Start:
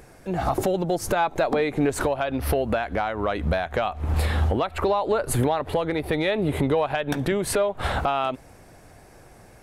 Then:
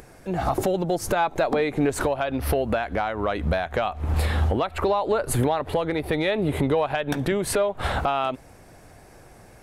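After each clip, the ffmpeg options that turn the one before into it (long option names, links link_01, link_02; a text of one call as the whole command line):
ffmpeg -i in.wav -af "acompressor=mode=upward:threshold=-45dB:ratio=2.5" out.wav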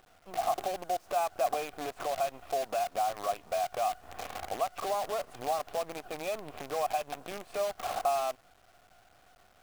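ffmpeg -i in.wav -filter_complex "[0:a]asplit=3[link_01][link_02][link_03];[link_01]bandpass=frequency=730:width_type=q:width=8,volume=0dB[link_04];[link_02]bandpass=frequency=1090:width_type=q:width=8,volume=-6dB[link_05];[link_03]bandpass=frequency=2440:width_type=q:width=8,volume=-9dB[link_06];[link_04][link_05][link_06]amix=inputs=3:normalize=0,acrusher=bits=7:dc=4:mix=0:aa=0.000001" out.wav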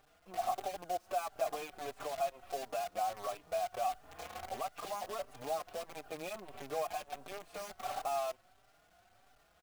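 ffmpeg -i in.wav -filter_complex "[0:a]asplit=2[link_01][link_02];[link_02]adelay=4.6,afreqshift=1.5[link_03];[link_01][link_03]amix=inputs=2:normalize=1,volume=-2.5dB" out.wav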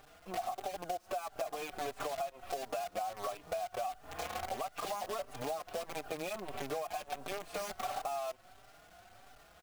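ffmpeg -i in.wav -af "acompressor=threshold=-43dB:ratio=10,volume=8.5dB" out.wav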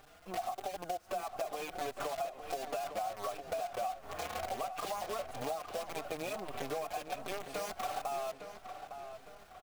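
ffmpeg -i in.wav -filter_complex "[0:a]asplit=2[link_01][link_02];[link_02]adelay=858,lowpass=frequency=3300:poles=1,volume=-9dB,asplit=2[link_03][link_04];[link_04]adelay=858,lowpass=frequency=3300:poles=1,volume=0.42,asplit=2[link_05][link_06];[link_06]adelay=858,lowpass=frequency=3300:poles=1,volume=0.42,asplit=2[link_07][link_08];[link_08]adelay=858,lowpass=frequency=3300:poles=1,volume=0.42,asplit=2[link_09][link_10];[link_10]adelay=858,lowpass=frequency=3300:poles=1,volume=0.42[link_11];[link_01][link_03][link_05][link_07][link_09][link_11]amix=inputs=6:normalize=0" out.wav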